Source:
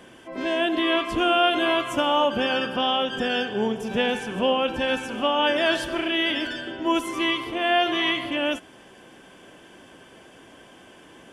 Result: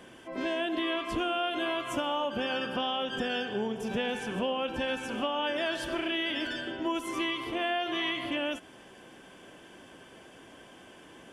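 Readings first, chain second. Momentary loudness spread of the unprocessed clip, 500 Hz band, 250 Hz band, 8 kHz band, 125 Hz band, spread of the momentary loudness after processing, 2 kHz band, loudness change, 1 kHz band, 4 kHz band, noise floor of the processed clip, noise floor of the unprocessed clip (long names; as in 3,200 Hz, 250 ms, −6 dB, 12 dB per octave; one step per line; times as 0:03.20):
6 LU, −8.5 dB, −7.0 dB, −5.5 dB, −5.0 dB, 21 LU, −8.0 dB, −8.0 dB, −9.0 dB, −8.5 dB, −53 dBFS, −50 dBFS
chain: downward compressor 4 to 1, threshold −25 dBFS, peak gain reduction 9 dB
level −3 dB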